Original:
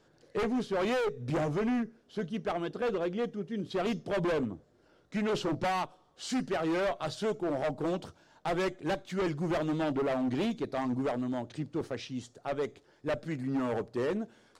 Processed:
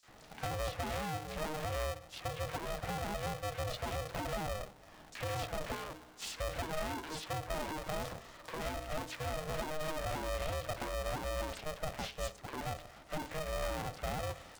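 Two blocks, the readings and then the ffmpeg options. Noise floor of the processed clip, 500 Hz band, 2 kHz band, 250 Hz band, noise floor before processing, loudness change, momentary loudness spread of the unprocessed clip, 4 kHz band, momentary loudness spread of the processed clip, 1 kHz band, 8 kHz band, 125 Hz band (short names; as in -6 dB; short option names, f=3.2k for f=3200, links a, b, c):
-57 dBFS, -8.0 dB, -3.0 dB, -14.5 dB, -65 dBFS, -6.5 dB, 8 LU, -0.5 dB, 6 LU, -3.0 dB, +4.0 dB, -3.0 dB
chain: -filter_complex "[0:a]acompressor=threshold=-37dB:ratio=6,bandreject=f=93.65:t=h:w=4,bandreject=f=187.3:t=h:w=4,bandreject=f=280.95:t=h:w=4,bandreject=f=374.6:t=h:w=4,asoftclip=type=tanh:threshold=-37dB,acrossover=split=150|320[a][b][c];[a]acompressor=threshold=-60dB:ratio=4[d];[b]acompressor=threshold=-45dB:ratio=4[e];[c]acompressor=threshold=-50dB:ratio=4[f];[d][e][f]amix=inputs=3:normalize=0,equalizer=f=100:w=0.93:g=-9,acrossover=split=950|4900[g][h][i];[h]adelay=30[j];[g]adelay=80[k];[k][j][i]amix=inputs=3:normalize=0,aeval=exprs='val(0)*sgn(sin(2*PI*310*n/s))':c=same,volume=10dB"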